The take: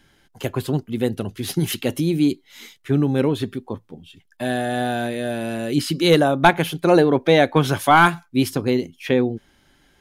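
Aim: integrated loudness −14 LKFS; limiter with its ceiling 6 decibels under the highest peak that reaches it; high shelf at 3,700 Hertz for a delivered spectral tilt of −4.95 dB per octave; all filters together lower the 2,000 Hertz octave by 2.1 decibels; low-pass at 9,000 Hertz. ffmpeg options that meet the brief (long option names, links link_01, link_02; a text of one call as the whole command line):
ffmpeg -i in.wav -af "lowpass=9000,equalizer=frequency=2000:width_type=o:gain=-4.5,highshelf=frequency=3700:gain=6,volume=8dB,alimiter=limit=-1dB:level=0:latency=1" out.wav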